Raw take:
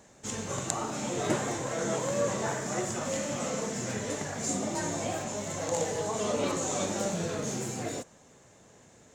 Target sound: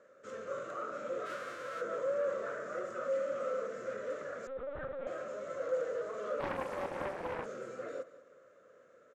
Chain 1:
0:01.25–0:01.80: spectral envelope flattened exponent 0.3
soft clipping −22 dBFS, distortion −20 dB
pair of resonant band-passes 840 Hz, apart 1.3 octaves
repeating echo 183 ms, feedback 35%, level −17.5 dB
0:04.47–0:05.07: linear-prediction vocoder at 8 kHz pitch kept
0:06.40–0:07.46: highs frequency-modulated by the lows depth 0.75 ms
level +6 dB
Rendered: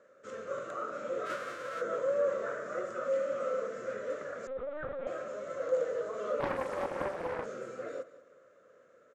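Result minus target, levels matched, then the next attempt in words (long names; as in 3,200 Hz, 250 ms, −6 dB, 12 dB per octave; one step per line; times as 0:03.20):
soft clipping: distortion −9 dB
0:01.25–0:01.80: spectral envelope flattened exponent 0.3
soft clipping −30.5 dBFS, distortion −11 dB
pair of resonant band-passes 840 Hz, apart 1.3 octaves
repeating echo 183 ms, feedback 35%, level −17.5 dB
0:04.47–0:05.07: linear-prediction vocoder at 8 kHz pitch kept
0:06.40–0:07.46: highs frequency-modulated by the lows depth 0.75 ms
level +6 dB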